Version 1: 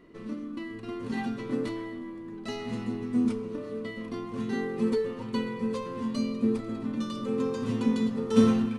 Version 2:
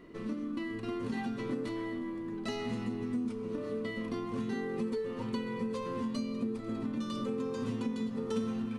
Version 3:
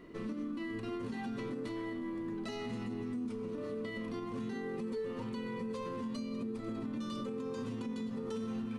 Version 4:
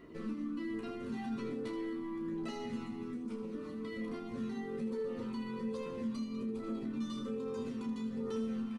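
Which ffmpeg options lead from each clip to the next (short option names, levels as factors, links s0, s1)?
-af "acompressor=threshold=0.02:ratio=6,volume=1.26"
-af "alimiter=level_in=2.37:limit=0.0631:level=0:latency=1:release=75,volume=0.422"
-filter_complex "[0:a]flanger=delay=0:depth=1.1:regen=-35:speed=1.2:shape=triangular,asplit=2[s0][s1];[s1]aecho=0:1:13|31|79:0.531|0.422|0.316[s2];[s0][s2]amix=inputs=2:normalize=0"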